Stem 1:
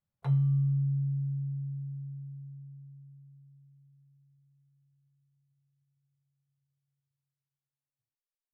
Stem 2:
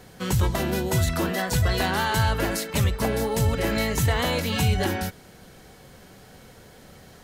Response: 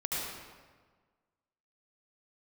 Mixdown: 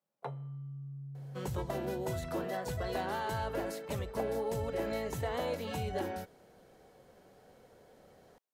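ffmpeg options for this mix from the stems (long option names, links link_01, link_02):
-filter_complex "[0:a]highpass=frequency=190:width=0.5412,highpass=frequency=190:width=1.3066,acompressor=threshold=-44dB:ratio=3,volume=-1.5dB[link_01];[1:a]adelay=1150,volume=-18.5dB[link_02];[link_01][link_02]amix=inputs=2:normalize=0,equalizer=frequency=550:width_type=o:width=2:gain=12.5"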